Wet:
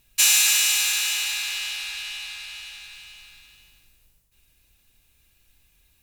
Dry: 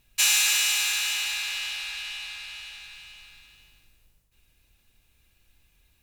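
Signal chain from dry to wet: high shelf 4700 Hz +6.5 dB

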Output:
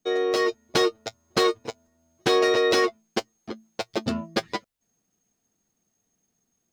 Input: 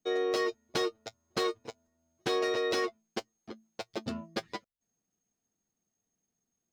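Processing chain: AGC gain up to 4 dB; gain +5.5 dB

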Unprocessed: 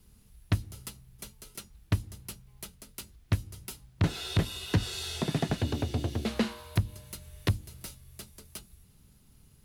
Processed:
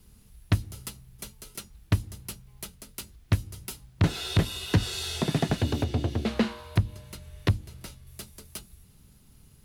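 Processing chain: 5.84–8.07 high shelf 6200 Hz -10 dB; gain +3.5 dB

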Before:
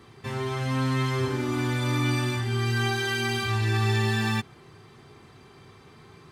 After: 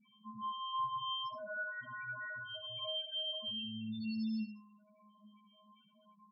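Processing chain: 0.95–3.43 minimum comb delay 1.3 ms; resonator 210 Hz, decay 0.6 s, harmonics odd, mix 100%; flange 0.32 Hz, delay 6.8 ms, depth 5 ms, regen -86%; loudest bins only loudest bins 4; tapped delay 73/100 ms -9.5/-19.5 dB; gain +12 dB

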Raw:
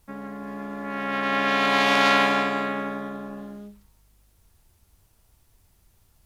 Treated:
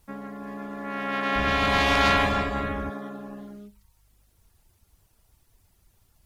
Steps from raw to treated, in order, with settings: 1.35–2.9 octaver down 2 oct, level +1 dB; reverb removal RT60 0.63 s

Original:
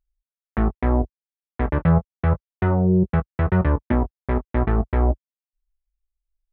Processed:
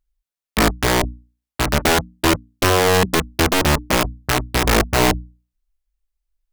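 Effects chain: wrapped overs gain 14 dB; notches 60/120/180/240/300 Hz; gain +4.5 dB

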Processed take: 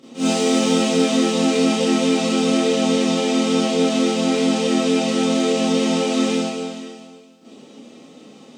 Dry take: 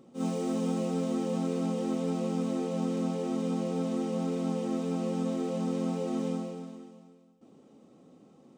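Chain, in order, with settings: weighting filter D; Schroeder reverb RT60 0.39 s, combs from 26 ms, DRR -9.5 dB; gain +4.5 dB

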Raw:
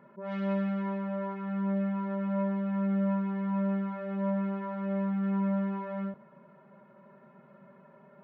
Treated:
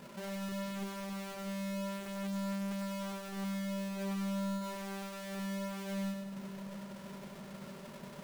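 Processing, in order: half-waves squared off; compressor 4:1, threshold -45 dBFS, peak gain reduction 17.5 dB; split-band echo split 470 Hz, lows 0.644 s, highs 99 ms, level -5 dB; gain +1.5 dB

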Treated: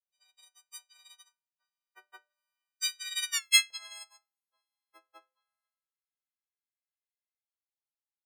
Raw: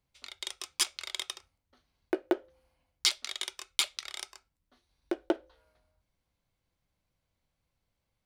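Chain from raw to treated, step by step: frequency quantiser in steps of 4 st; Doppler pass-by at 3.38, 24 m/s, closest 1.5 m; LFO high-pass saw up 0.27 Hz 670–1900 Hz; gain +3.5 dB

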